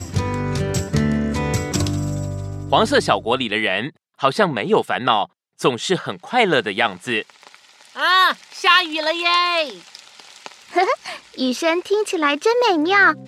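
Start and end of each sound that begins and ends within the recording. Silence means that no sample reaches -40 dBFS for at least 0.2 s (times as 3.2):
4.19–5.26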